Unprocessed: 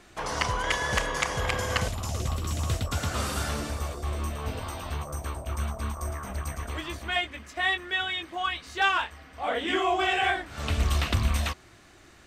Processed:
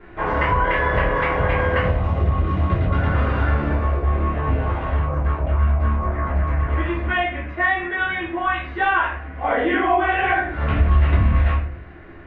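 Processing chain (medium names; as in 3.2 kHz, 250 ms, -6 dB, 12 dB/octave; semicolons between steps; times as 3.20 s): reverberation RT60 0.50 s, pre-delay 3 ms, DRR -10 dB; compression 2:1, threshold -14 dBFS, peak gain reduction 7 dB; low-pass 2.2 kHz 24 dB/octave; trim -2.5 dB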